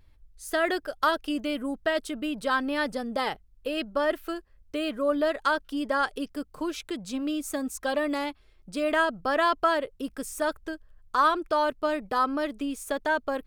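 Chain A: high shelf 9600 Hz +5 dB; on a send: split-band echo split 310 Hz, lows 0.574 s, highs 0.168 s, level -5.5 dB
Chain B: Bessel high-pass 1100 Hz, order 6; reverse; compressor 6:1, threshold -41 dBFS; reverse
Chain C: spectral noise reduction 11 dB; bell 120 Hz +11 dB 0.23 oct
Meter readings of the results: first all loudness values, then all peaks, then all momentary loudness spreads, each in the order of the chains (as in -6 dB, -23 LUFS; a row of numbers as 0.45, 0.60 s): -27.0, -44.5, -28.5 LUFS; -9.5, -27.5, -11.0 dBFS; 9, 6, 11 LU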